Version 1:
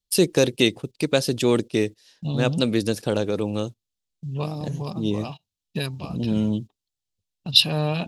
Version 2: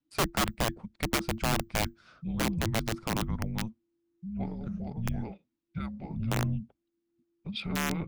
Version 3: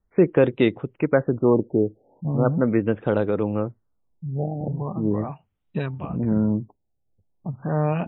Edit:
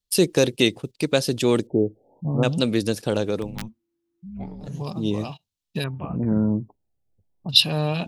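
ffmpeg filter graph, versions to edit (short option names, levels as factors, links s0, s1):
-filter_complex "[2:a]asplit=2[s0][s1];[0:a]asplit=4[s2][s3][s4][s5];[s2]atrim=end=1.672[s6];[s0]atrim=start=1.668:end=2.432[s7];[s3]atrim=start=2.428:end=3.58[s8];[1:a]atrim=start=3.34:end=4.82[s9];[s4]atrim=start=4.58:end=5.842[s10];[s1]atrim=start=5.838:end=7.492[s11];[s5]atrim=start=7.488[s12];[s6][s7]acrossfade=d=0.004:c1=hsin:c2=hsin[s13];[s13][s8]acrossfade=d=0.004:c1=hsin:c2=hsin[s14];[s14][s9]acrossfade=d=0.24:c1=tri:c2=tri[s15];[s15][s10]acrossfade=d=0.24:c1=tri:c2=tri[s16];[s16][s11]acrossfade=d=0.004:c1=hsin:c2=hsin[s17];[s17][s12]acrossfade=d=0.004:c1=hsin:c2=hsin"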